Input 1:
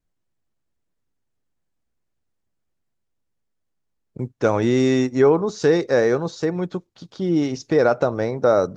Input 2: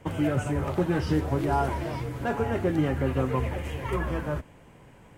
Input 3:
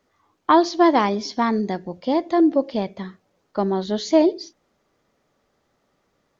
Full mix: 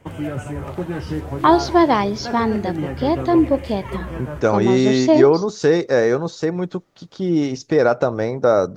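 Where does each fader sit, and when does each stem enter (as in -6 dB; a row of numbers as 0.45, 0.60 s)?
+1.5, -0.5, +1.5 dB; 0.00, 0.00, 0.95 s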